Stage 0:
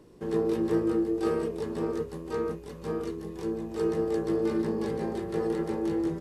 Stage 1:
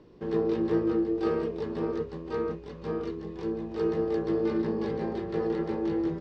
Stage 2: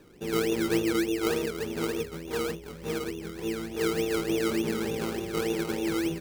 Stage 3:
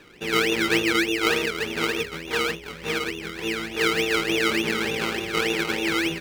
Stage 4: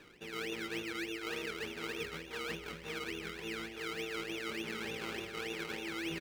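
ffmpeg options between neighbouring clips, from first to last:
-af "lowpass=f=4.9k:w=0.5412,lowpass=f=4.9k:w=1.3066"
-af "bandreject=f=1.1k:w=7.4,acrusher=samples=20:mix=1:aa=0.000001:lfo=1:lforange=12:lforate=3.4"
-af "equalizer=f=2.4k:w=0.51:g=14.5"
-filter_complex "[0:a]areverse,acompressor=threshold=-30dB:ratio=6,areverse,asplit=2[a][b];[b]adelay=198.3,volume=-13dB,highshelf=f=4k:g=-4.46[c];[a][c]amix=inputs=2:normalize=0,volume=-7dB"

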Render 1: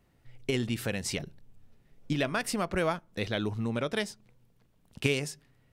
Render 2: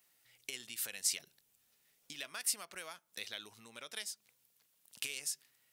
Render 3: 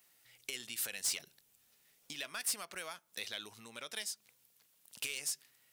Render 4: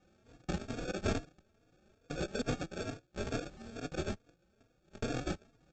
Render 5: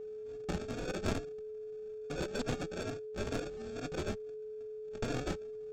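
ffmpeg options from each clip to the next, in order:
-af "acompressor=threshold=-37dB:ratio=4,aderivative,volume=9dB"
-af "asoftclip=type=tanh:threshold=-32dB,volume=3.5dB"
-filter_complex "[0:a]aresample=16000,acrusher=samples=16:mix=1:aa=0.000001,aresample=44100,asplit=2[a][b];[b]adelay=3.6,afreqshift=2.3[c];[a][c]amix=inputs=2:normalize=1,volume=9dB"
-af "aeval=exprs='val(0)+0.00794*sin(2*PI*430*n/s)':c=same,aeval=exprs='clip(val(0),-1,0.0178)':c=same,volume=1dB"

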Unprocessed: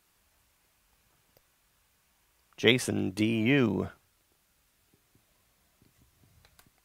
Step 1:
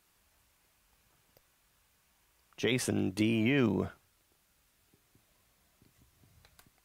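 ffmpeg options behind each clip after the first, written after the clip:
-af "alimiter=limit=-16.5dB:level=0:latency=1:release=28,volume=-1dB"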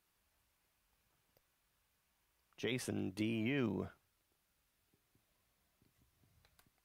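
-af "equalizer=f=7.4k:w=1.9:g=-3,volume=-9dB"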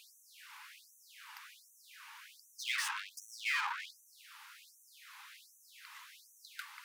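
-filter_complex "[0:a]bandreject=f=68.44:t=h:w=4,bandreject=f=136.88:t=h:w=4,bandreject=f=205.32:t=h:w=4,bandreject=f=273.76:t=h:w=4,bandreject=f=342.2:t=h:w=4,bandreject=f=410.64:t=h:w=4,bandreject=f=479.08:t=h:w=4,bandreject=f=547.52:t=h:w=4,bandreject=f=615.96:t=h:w=4,bandreject=f=684.4:t=h:w=4,bandreject=f=752.84:t=h:w=4,bandreject=f=821.28:t=h:w=4,asplit=2[a][b];[b]highpass=f=720:p=1,volume=36dB,asoftclip=type=tanh:threshold=-25.5dB[c];[a][c]amix=inputs=2:normalize=0,lowpass=f=1.4k:p=1,volume=-6dB,afftfilt=real='re*gte(b*sr/1024,780*pow(5900/780,0.5+0.5*sin(2*PI*1.3*pts/sr)))':imag='im*gte(b*sr/1024,780*pow(5900/780,0.5+0.5*sin(2*PI*1.3*pts/sr)))':win_size=1024:overlap=0.75,volume=6.5dB"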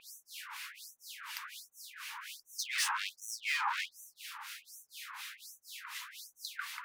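-filter_complex "[0:a]alimiter=level_in=10dB:limit=-24dB:level=0:latency=1:release=30,volume=-10dB,acrossover=split=1800[a][b];[a]aeval=exprs='val(0)*(1-1/2+1/2*cos(2*PI*4.1*n/s))':c=same[c];[b]aeval=exprs='val(0)*(1-1/2-1/2*cos(2*PI*4.1*n/s))':c=same[d];[c][d]amix=inputs=2:normalize=0,volume=13.5dB"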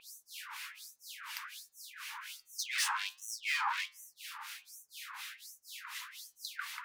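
-af "flanger=delay=6.6:depth=1.3:regen=88:speed=1.8:shape=sinusoidal,volume=4.5dB"

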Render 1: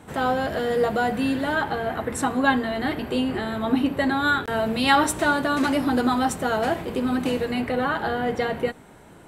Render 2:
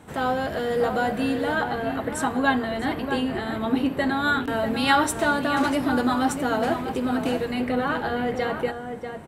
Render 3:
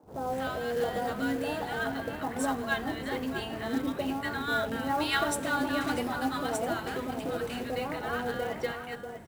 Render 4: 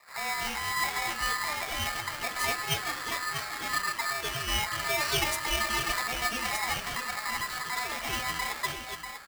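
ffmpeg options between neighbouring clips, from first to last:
-filter_complex "[0:a]asplit=2[a][b];[b]adelay=641.4,volume=-7dB,highshelf=f=4k:g=-14.4[c];[a][c]amix=inputs=2:normalize=0,volume=-1.5dB"
-filter_complex "[0:a]acrossover=split=250|990[a][b][c];[a]adelay=30[d];[c]adelay=240[e];[d][b][e]amix=inputs=3:normalize=0,acrusher=bits=5:mode=log:mix=0:aa=0.000001,volume=-5.5dB"
-af "aeval=exprs='val(0)*sgn(sin(2*PI*1500*n/s))':c=same"

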